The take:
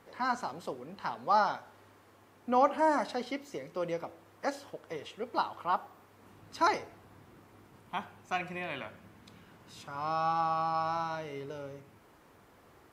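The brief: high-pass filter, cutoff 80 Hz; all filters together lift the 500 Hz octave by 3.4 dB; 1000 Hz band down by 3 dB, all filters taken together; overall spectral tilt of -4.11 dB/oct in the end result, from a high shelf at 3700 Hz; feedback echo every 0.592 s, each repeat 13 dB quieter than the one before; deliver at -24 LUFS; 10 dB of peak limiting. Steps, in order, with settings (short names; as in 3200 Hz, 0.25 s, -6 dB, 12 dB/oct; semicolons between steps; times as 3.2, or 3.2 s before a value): HPF 80 Hz; bell 500 Hz +6 dB; bell 1000 Hz -5.5 dB; high shelf 3700 Hz -6 dB; limiter -22 dBFS; feedback echo 0.592 s, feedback 22%, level -13 dB; gain +12.5 dB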